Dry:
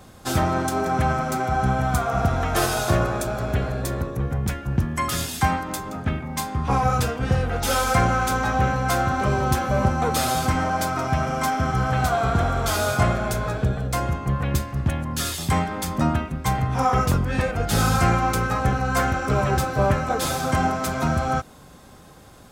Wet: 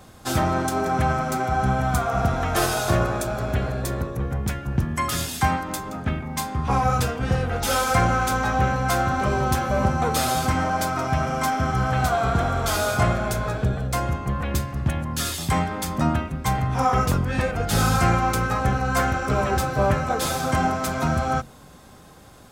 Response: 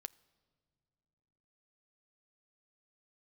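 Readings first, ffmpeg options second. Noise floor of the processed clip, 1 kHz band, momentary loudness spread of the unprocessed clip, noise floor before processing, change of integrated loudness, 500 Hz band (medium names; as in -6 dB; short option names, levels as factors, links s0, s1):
-46 dBFS, 0.0 dB, 5 LU, -46 dBFS, -0.5 dB, 0.0 dB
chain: -af "bandreject=f=45.72:t=h:w=4,bandreject=f=91.44:t=h:w=4,bandreject=f=137.16:t=h:w=4,bandreject=f=182.88:t=h:w=4,bandreject=f=228.6:t=h:w=4,bandreject=f=274.32:t=h:w=4,bandreject=f=320.04:t=h:w=4,bandreject=f=365.76:t=h:w=4,bandreject=f=411.48:t=h:w=4,bandreject=f=457.2:t=h:w=4,bandreject=f=502.92:t=h:w=4,bandreject=f=548.64:t=h:w=4"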